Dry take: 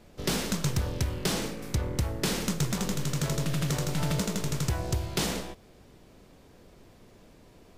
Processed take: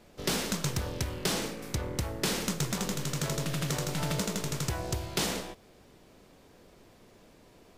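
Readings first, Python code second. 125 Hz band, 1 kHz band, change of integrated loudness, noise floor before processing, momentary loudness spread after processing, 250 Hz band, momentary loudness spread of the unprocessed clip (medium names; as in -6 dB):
-4.5 dB, -0.5 dB, -2.0 dB, -55 dBFS, 5 LU, -3.0 dB, 3 LU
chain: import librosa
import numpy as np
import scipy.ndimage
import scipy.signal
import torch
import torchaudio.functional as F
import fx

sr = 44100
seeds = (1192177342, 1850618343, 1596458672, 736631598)

y = fx.low_shelf(x, sr, hz=190.0, db=-6.5)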